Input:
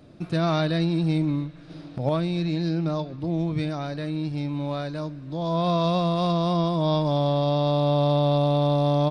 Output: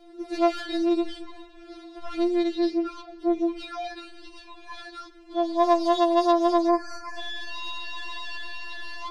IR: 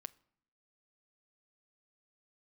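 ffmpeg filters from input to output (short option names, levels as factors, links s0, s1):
-filter_complex "[0:a]asoftclip=type=tanh:threshold=0.075,asettb=1/sr,asplit=3[s0][s1][s2];[s0]atrim=end=6.684[s3];[s1]atrim=start=6.68:end=7.19,asetpts=PTS-STARTPTS,afade=t=in:d=0.004:c=qsin,afade=t=out:st=0.506:d=0.004:c=qsin,asuperstop=centerf=3400:order=20:qfactor=1.9[s4];[s2]atrim=start=7.186[s5];[s3][s4]acrossfade=d=0.004:c1=hsin:c2=qsin[s6];[s6][s5]acrossfade=d=0.004:c1=qsin:c2=hsin,afftfilt=real='re*4*eq(mod(b,16),0)':imag='im*4*eq(mod(b,16),0)':win_size=2048:overlap=0.75,volume=1.58"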